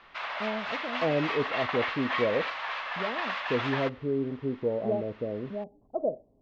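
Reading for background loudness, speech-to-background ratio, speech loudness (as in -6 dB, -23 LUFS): -32.5 LUFS, 0.5 dB, -32.0 LUFS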